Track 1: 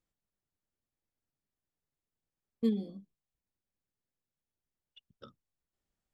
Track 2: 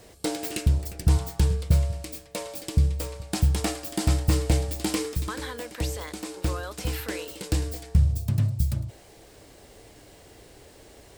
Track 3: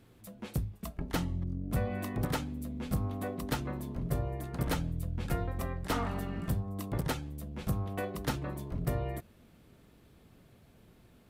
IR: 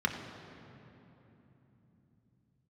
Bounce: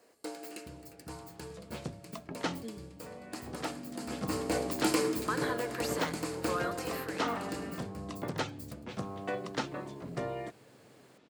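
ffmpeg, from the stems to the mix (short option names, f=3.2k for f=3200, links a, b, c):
-filter_complex "[0:a]volume=-11.5dB,asplit=2[a][b];[1:a]volume=-1dB,afade=t=in:st=4.07:d=0.79:silence=0.251189,afade=t=out:st=6.5:d=0.7:silence=0.334965,asplit=2[c][d];[d]volume=-12.5dB[e];[2:a]lowpass=f=6.9k:w=0.5412,lowpass=f=6.9k:w=1.3066,adelay=1300,volume=1.5dB[f];[b]apad=whole_len=555301[g];[f][g]sidechaincompress=threshold=-55dB:ratio=8:attack=16:release=1010[h];[3:a]atrim=start_sample=2205[i];[e][i]afir=irnorm=-1:irlink=0[j];[a][c][h][j]amix=inputs=4:normalize=0,highpass=250"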